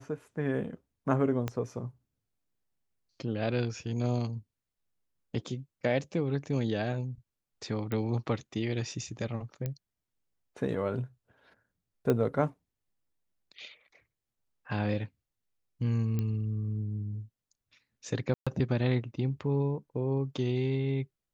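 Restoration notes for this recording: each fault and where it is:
1.48 pop -18 dBFS
7.92 pop -21 dBFS
9.66 pop -21 dBFS
12.1 pop -16 dBFS
16.19 pop -20 dBFS
18.34–18.47 gap 0.126 s

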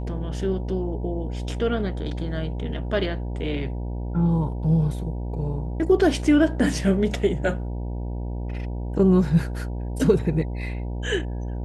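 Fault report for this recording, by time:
buzz 60 Hz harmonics 16 -29 dBFS

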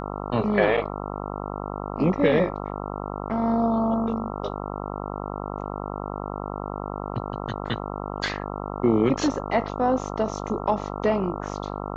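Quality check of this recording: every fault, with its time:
buzz 50 Hz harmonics 27 -32 dBFS

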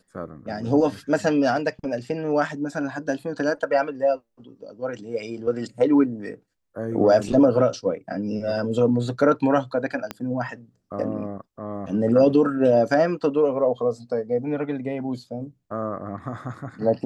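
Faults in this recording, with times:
10.11 pop -14 dBFS

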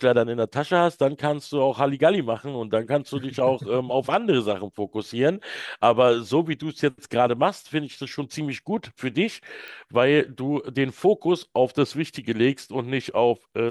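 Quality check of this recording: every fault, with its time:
9.68 pop

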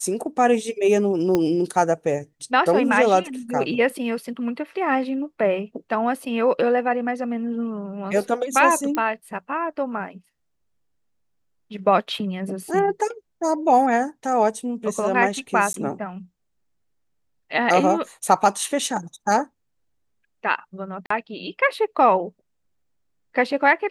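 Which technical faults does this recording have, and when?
1.35 pop -8 dBFS
8.95 pop -12 dBFS
15.73–15.74 gap 12 ms
21.06–21.1 gap 44 ms

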